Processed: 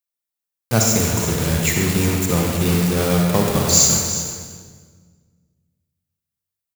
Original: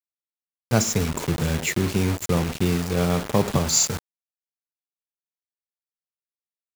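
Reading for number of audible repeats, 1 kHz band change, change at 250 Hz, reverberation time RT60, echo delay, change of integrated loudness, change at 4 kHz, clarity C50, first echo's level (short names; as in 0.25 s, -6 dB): 1, +4.0 dB, +4.5 dB, 1.6 s, 0.358 s, +5.5 dB, +6.0 dB, 1.0 dB, -12.5 dB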